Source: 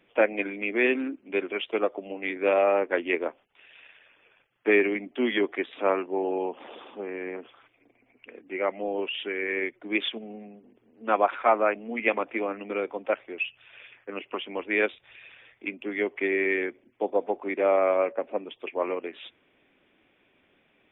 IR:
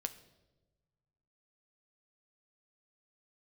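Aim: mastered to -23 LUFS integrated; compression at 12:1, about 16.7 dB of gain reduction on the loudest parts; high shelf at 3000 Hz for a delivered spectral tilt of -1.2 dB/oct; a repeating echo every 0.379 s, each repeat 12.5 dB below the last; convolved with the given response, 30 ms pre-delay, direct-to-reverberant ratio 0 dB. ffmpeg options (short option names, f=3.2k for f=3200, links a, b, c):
-filter_complex "[0:a]highshelf=f=3k:g=4.5,acompressor=threshold=-33dB:ratio=12,aecho=1:1:379|758|1137:0.237|0.0569|0.0137,asplit=2[a][b];[1:a]atrim=start_sample=2205,adelay=30[c];[b][c]afir=irnorm=-1:irlink=0,volume=1dB[d];[a][d]amix=inputs=2:normalize=0,volume=12.5dB"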